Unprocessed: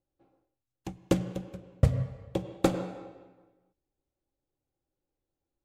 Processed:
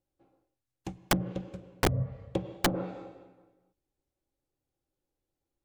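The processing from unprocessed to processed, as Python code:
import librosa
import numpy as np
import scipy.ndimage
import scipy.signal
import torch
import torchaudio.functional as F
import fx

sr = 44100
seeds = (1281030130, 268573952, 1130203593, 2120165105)

y = fx.env_lowpass_down(x, sr, base_hz=860.0, full_db=-22.0)
y = (np.mod(10.0 ** (16.0 / 20.0) * y + 1.0, 2.0) - 1.0) / 10.0 ** (16.0 / 20.0)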